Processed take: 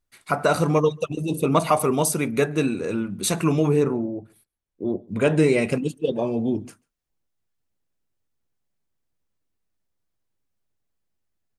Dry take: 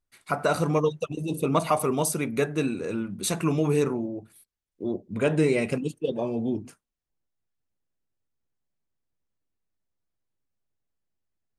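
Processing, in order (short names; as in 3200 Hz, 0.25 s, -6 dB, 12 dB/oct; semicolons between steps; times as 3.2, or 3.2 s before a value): 3.69–5.08 high shelf 2100 Hz -10 dB; outdoor echo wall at 24 m, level -28 dB; gain +4 dB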